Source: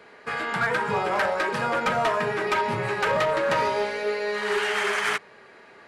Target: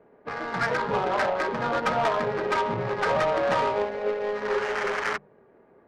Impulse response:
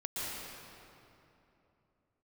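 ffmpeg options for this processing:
-filter_complex "[0:a]asplit=3[link_01][link_02][link_03];[link_02]asetrate=55563,aresample=44100,atempo=0.793701,volume=-10dB[link_04];[link_03]asetrate=58866,aresample=44100,atempo=0.749154,volume=-17dB[link_05];[link_01][link_04][link_05]amix=inputs=3:normalize=0,adynamicsmooth=sensitivity=1:basefreq=550,bandreject=frequency=50:width_type=h:width=6,bandreject=frequency=100:width_type=h:width=6,bandreject=frequency=150:width_type=h:width=6,bandreject=frequency=200:width_type=h:width=6"

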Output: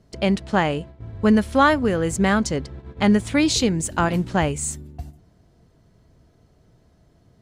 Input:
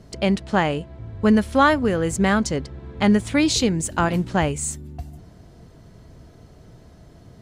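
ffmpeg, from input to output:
ffmpeg -i in.wav -af "agate=range=-10dB:threshold=-36dB:ratio=16:detection=peak" out.wav

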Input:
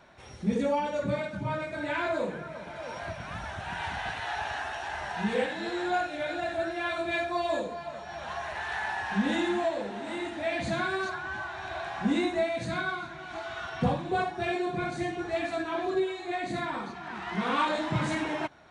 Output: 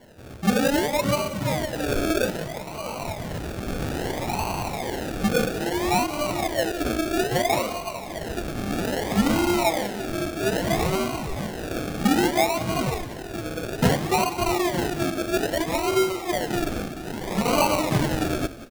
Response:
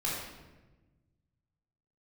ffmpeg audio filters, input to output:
-filter_complex "[0:a]asettb=1/sr,asplit=3[link_01][link_02][link_03];[link_01]atrim=end=7.124[link_04];[link_02]atrim=start=7.12:end=7.67,asetpts=PTS-STARTPTS,afade=type=in:duration=0.004:curve=qsin,afade=type=out:start_time=0.546:duration=0.004:curve=qsin,afreqshift=19[link_05];[link_03]atrim=start=7.666[link_06];[link_04][link_05]acrossfade=duration=0.004:curve1=hsin:curve2=qsin[link_07];[link_07][link_06]acrossfade=duration=0.004:curve1=qsin:curve2=hsin,acrusher=samples=35:mix=1:aa=0.000001:lfo=1:lforange=21:lforate=0.61,asplit=4[link_08][link_09][link_10][link_11];[link_09]adelay=180,afreqshift=-33,volume=-15dB[link_12];[link_10]adelay=360,afreqshift=-66,volume=-23.9dB[link_13];[link_11]adelay=540,afreqshift=-99,volume=-32.7dB[link_14];[link_08][link_12][link_13][link_14]amix=inputs=4:normalize=0,volume=6.5dB"

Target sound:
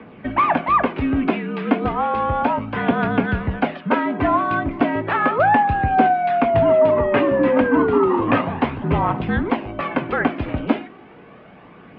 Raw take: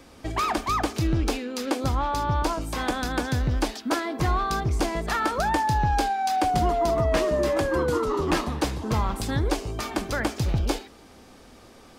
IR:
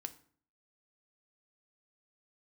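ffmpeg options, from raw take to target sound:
-filter_complex "[0:a]asplit=2[link_01][link_02];[1:a]atrim=start_sample=2205,asetrate=48510,aresample=44100[link_03];[link_02][link_03]afir=irnorm=-1:irlink=0,volume=-1dB[link_04];[link_01][link_04]amix=inputs=2:normalize=0,aphaser=in_gain=1:out_gain=1:delay=3.2:decay=0.35:speed=0.33:type=triangular,highpass=frequency=150:width_type=q:width=0.5412,highpass=frequency=150:width_type=q:width=1.307,lowpass=frequency=2800:width_type=q:width=0.5176,lowpass=frequency=2800:width_type=q:width=0.7071,lowpass=frequency=2800:width_type=q:width=1.932,afreqshift=-57,volume=3.5dB"

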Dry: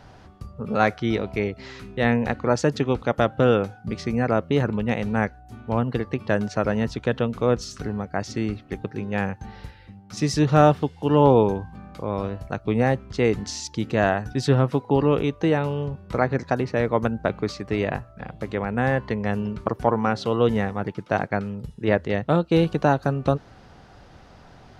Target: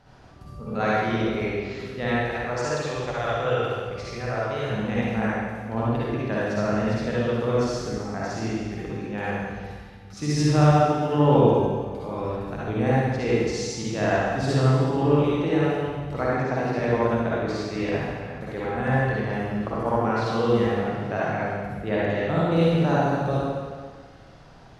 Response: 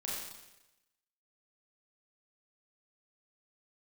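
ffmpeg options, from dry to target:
-filter_complex "[0:a]asettb=1/sr,asplit=3[link_01][link_02][link_03];[link_01]atrim=end=2.084[link_04];[link_02]atrim=start=2.08:end=4.71,asetpts=PTS-STARTPTS,afade=type=in:duration=0.004:curve=qsin,afade=type=out:start_time=2.626:duration=0.004:curve=qsin,equalizer=frequency=230:width_type=o:width=1.3:gain=-15[link_05];[link_03]atrim=start=4.706[link_06];[link_04][link_05]acrossfade=duration=0.004:curve1=hsin:curve2=qsin[link_07];[link_07][link_06]acrossfade=duration=0.004:curve1=qsin:curve2=hsin[link_08];[1:a]atrim=start_sample=2205,asetrate=26901,aresample=44100[link_09];[link_08][link_09]afir=irnorm=-1:irlink=0,volume=-6.5dB"

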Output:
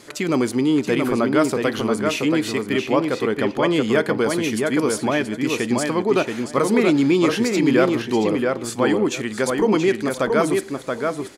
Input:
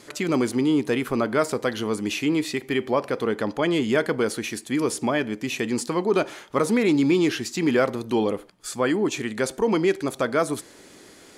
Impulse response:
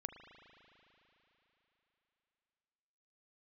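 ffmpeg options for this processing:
-filter_complex "[0:a]asplit=2[link_01][link_02];[link_02]adelay=678,lowpass=frequency=3700:poles=1,volume=-3.5dB,asplit=2[link_03][link_04];[link_04]adelay=678,lowpass=frequency=3700:poles=1,volume=0.17,asplit=2[link_05][link_06];[link_06]adelay=678,lowpass=frequency=3700:poles=1,volume=0.17[link_07];[link_01][link_03][link_05][link_07]amix=inputs=4:normalize=0,volume=2.5dB"

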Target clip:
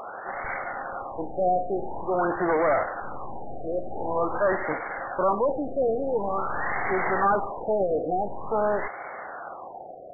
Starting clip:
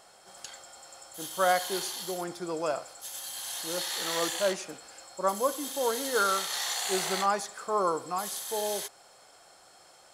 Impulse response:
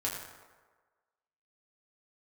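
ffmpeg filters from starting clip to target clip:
-filter_complex "[0:a]aeval=exprs='max(val(0),0)':channel_layout=same,asplit=2[link_01][link_02];[link_02]highpass=frequency=720:poles=1,volume=36dB,asoftclip=type=tanh:threshold=-13dB[link_03];[link_01][link_03]amix=inputs=2:normalize=0,lowpass=frequency=5200:poles=1,volume=-6dB,afftfilt=real='re*lt(b*sr/1024,750*pow(2300/750,0.5+0.5*sin(2*PI*0.47*pts/sr)))':imag='im*lt(b*sr/1024,750*pow(2300/750,0.5+0.5*sin(2*PI*0.47*pts/sr)))':win_size=1024:overlap=0.75"

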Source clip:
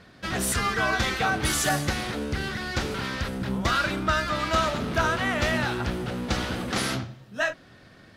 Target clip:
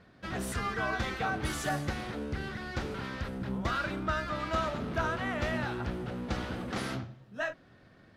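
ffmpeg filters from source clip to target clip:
ffmpeg -i in.wav -af "highshelf=frequency=2800:gain=-9.5,volume=-6dB" out.wav

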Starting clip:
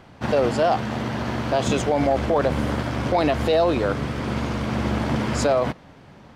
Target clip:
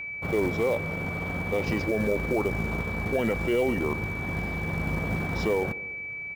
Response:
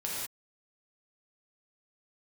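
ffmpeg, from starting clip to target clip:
-filter_complex "[0:a]highshelf=frequency=2600:gain=-5,asplit=2[link_01][link_02];[1:a]atrim=start_sample=2205,asetrate=83790,aresample=44100[link_03];[link_02][link_03]afir=irnorm=-1:irlink=0,volume=-26dB[link_04];[link_01][link_04]amix=inputs=2:normalize=0,asetrate=33038,aresample=44100,atempo=1.33484,acrusher=bits=6:mode=log:mix=0:aa=0.000001,aeval=exprs='val(0)+0.0447*sin(2*PI*2300*n/s)':channel_layout=same,asplit=2[link_05][link_06];[link_06]adelay=145,lowpass=frequency=1700:poles=1,volume=-18.5dB,asplit=2[link_07][link_08];[link_08]adelay=145,lowpass=frequency=1700:poles=1,volume=0.49,asplit=2[link_09][link_10];[link_10]adelay=145,lowpass=frequency=1700:poles=1,volume=0.49,asplit=2[link_11][link_12];[link_12]adelay=145,lowpass=frequency=1700:poles=1,volume=0.49[link_13];[link_07][link_09][link_11][link_13]amix=inputs=4:normalize=0[link_14];[link_05][link_14]amix=inputs=2:normalize=0,volume=-6dB"

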